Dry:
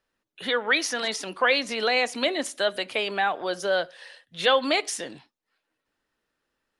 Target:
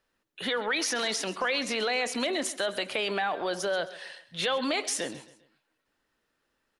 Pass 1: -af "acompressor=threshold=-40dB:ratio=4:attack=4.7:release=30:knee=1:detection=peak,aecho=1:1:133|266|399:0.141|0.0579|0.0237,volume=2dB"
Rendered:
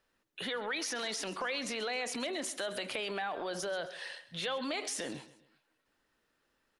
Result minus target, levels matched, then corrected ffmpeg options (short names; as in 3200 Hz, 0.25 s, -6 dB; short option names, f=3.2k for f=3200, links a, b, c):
compressor: peak gain reduction +7.5 dB
-af "acompressor=threshold=-30dB:ratio=4:attack=4.7:release=30:knee=1:detection=peak,aecho=1:1:133|266|399:0.141|0.0579|0.0237,volume=2dB"